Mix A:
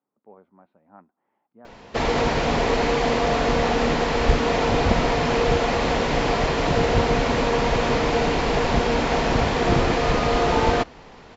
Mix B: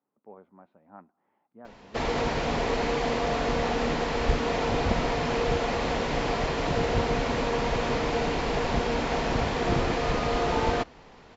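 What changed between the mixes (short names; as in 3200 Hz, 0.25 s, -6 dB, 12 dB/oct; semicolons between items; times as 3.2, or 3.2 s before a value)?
speech: send +8.0 dB; background -6.0 dB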